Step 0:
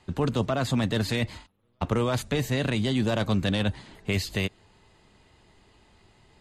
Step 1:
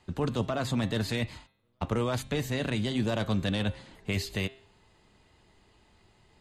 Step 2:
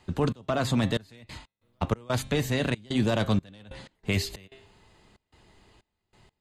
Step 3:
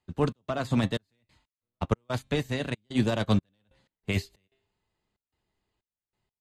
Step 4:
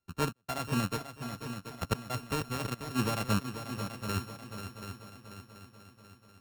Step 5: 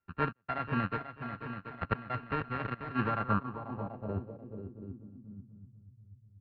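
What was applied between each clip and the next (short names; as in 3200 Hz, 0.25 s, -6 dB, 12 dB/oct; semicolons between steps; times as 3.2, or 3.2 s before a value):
de-hum 133.1 Hz, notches 32; gain -3.5 dB
step gate "xx.xxx..x.xx.xx" 93 bpm -24 dB; gain +4 dB
upward expander 2.5:1, over -38 dBFS; gain +2.5 dB
sample sorter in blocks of 32 samples; multi-head echo 0.244 s, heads second and third, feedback 52%, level -10 dB; gain -5.5 dB
downsampling 11025 Hz; low-pass sweep 1800 Hz -> 120 Hz, 2.98–5.98; gain -2 dB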